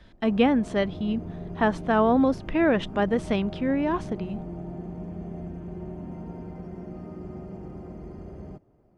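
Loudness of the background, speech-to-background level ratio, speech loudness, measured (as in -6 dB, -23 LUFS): -38.5 LUFS, 13.5 dB, -25.0 LUFS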